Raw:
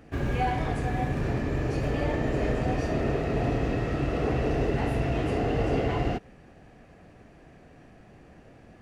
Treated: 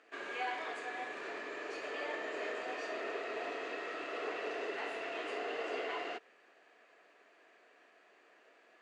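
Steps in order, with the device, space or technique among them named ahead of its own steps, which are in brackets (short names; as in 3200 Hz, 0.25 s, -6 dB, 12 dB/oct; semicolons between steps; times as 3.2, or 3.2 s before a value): phone speaker on a table (speaker cabinet 480–7500 Hz, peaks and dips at 540 Hz -8 dB, 800 Hz -9 dB, 5600 Hz -7 dB); gain -3 dB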